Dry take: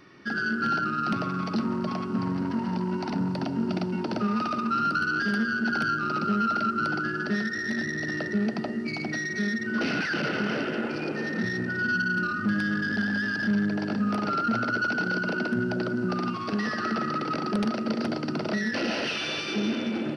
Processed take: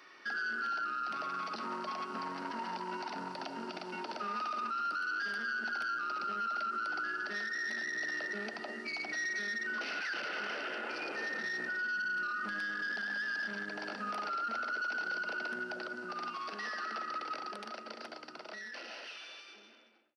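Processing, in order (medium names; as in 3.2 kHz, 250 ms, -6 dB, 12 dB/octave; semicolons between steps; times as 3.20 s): fade out at the end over 6.70 s; high-pass 680 Hz 12 dB/octave; peak limiter -30 dBFS, peak gain reduction 11.5 dB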